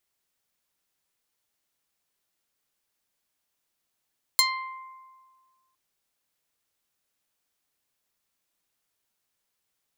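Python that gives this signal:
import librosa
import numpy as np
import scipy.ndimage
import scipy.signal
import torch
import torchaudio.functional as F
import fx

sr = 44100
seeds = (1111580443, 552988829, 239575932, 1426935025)

y = fx.pluck(sr, length_s=1.36, note=84, decay_s=1.69, pick=0.37, brightness='medium')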